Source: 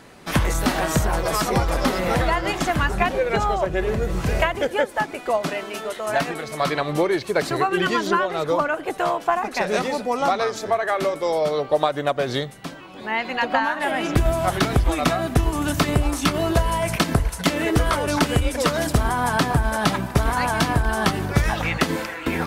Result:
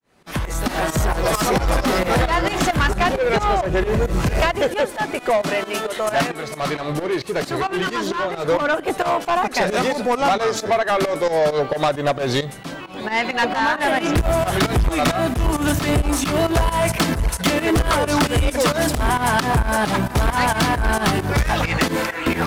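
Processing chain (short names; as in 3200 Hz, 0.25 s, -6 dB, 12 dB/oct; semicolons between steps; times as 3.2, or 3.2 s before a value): opening faded in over 1.37 s; soft clip -20.5 dBFS, distortion -9 dB; 6.27–8.48 flange 1.7 Hz, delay 9.8 ms, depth 8.1 ms, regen -77%; pump 133 bpm, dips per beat 2, -14 dB, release 0.125 s; gain +8 dB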